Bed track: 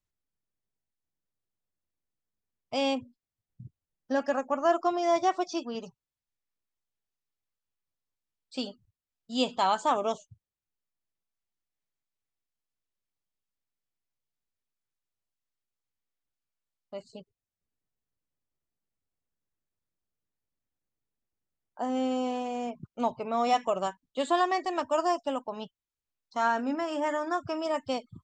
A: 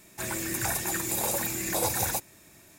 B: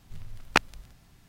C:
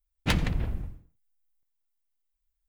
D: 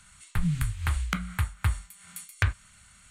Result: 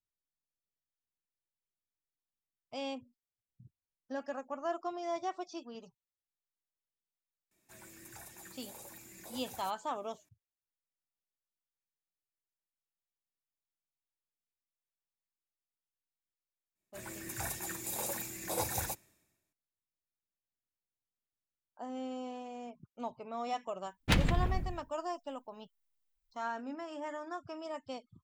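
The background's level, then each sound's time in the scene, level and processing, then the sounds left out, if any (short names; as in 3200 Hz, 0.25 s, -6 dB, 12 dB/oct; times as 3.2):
bed track -11.5 dB
7.51 add A -17.5 dB + flange 1.5 Hz, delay 2.2 ms, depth 3.2 ms, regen +74%
16.75 add A -9 dB + three-band expander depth 100%
23.82 add C -2 dB
not used: B, D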